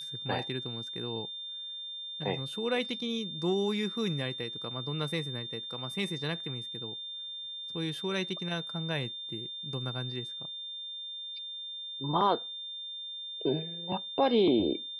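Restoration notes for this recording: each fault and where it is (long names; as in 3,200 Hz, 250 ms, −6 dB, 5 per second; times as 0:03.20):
whistle 3,600 Hz −38 dBFS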